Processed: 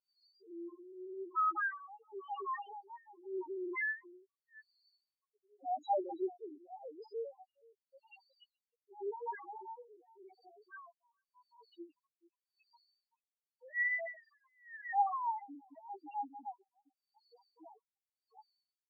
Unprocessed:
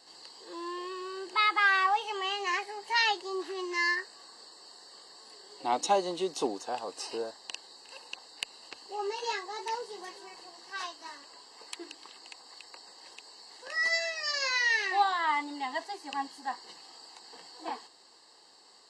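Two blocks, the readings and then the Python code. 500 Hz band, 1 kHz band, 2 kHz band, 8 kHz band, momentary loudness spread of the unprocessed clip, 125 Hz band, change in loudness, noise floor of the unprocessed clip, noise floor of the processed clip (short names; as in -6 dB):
-7.0 dB, -7.5 dB, -11.0 dB, under -35 dB, 22 LU, under -35 dB, -8.5 dB, -58 dBFS, under -85 dBFS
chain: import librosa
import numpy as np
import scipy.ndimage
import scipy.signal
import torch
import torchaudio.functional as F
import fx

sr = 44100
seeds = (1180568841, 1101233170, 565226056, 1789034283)

y = fx.reverse_delay(x, sr, ms=354, wet_db=-12.0)
y = fx.spec_topn(y, sr, count=1)
y = fx.filter_lfo_lowpass(y, sr, shape='sine', hz=0.88, low_hz=220.0, high_hz=3200.0, q=0.75)
y = y * librosa.db_to_amplitude(1.0)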